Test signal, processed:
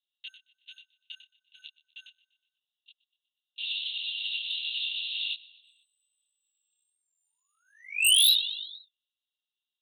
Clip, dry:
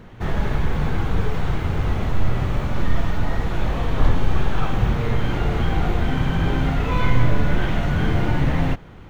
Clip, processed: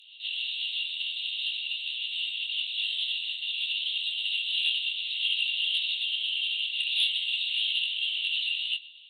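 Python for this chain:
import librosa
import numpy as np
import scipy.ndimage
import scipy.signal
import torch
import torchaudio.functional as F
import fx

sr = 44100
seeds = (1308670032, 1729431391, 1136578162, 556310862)

y = fx.lpc_vocoder(x, sr, seeds[0], excitation='whisper', order=8)
y = scipy.signal.sosfilt(scipy.signal.cheby1(6, 9, 2700.0, 'highpass', fs=sr, output='sos'), y)
y = fx.echo_feedback(y, sr, ms=122, feedback_pct=57, wet_db=-21.0)
y = fx.fold_sine(y, sr, drive_db=14, ceiling_db=-17.0)
y = fx.detune_double(y, sr, cents=13)
y = y * 10.0 ** (4.0 / 20.0)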